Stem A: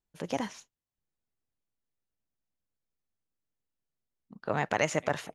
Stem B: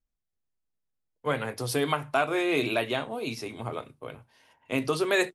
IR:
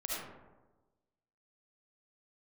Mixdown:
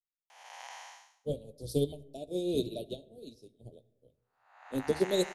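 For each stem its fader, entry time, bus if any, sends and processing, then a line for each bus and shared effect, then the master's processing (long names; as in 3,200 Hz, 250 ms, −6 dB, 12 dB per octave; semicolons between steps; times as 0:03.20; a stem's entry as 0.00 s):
+2.0 dB, 0.30 s, send −22.5 dB, spectrum smeared in time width 438 ms; Chebyshev high-pass filter 780 Hz, order 4; automatic ducking −7 dB, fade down 0.30 s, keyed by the second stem
+0.5 dB, 0.00 s, send −22.5 dB, sub-octave generator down 1 octave, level −5 dB; elliptic band-stop filter 560–3,800 Hz, stop band 50 dB; expander for the loud parts 2.5 to 1, over −46 dBFS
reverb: on, RT60 1.2 s, pre-delay 30 ms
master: no processing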